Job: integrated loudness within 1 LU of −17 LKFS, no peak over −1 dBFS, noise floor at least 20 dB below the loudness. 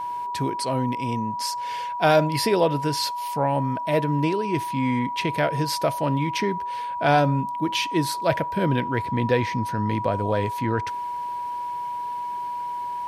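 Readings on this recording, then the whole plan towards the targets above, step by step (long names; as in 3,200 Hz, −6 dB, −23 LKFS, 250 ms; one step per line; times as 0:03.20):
interfering tone 970 Hz; level of the tone −27 dBFS; integrated loudness −24.5 LKFS; sample peak −5.5 dBFS; target loudness −17.0 LKFS
→ notch filter 970 Hz, Q 30
level +7.5 dB
brickwall limiter −1 dBFS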